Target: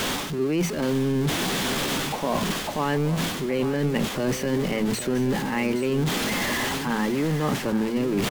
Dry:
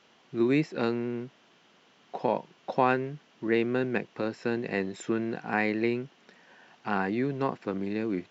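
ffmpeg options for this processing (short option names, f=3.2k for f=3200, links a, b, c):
-filter_complex "[0:a]aeval=exprs='val(0)+0.5*0.0376*sgn(val(0))':c=same,bass=f=250:g=9,treble=f=4k:g=0,bandreject=f=50:t=h:w=6,bandreject=f=100:t=h:w=6,bandreject=f=150:t=h:w=6,bandreject=f=200:t=h:w=6,areverse,acompressor=threshold=-30dB:ratio=6,areverse,asetrate=49501,aresample=44100,atempo=0.890899,asplit=2[a][b];[b]aecho=0:1:823:0.251[c];[a][c]amix=inputs=2:normalize=0,volume=8dB"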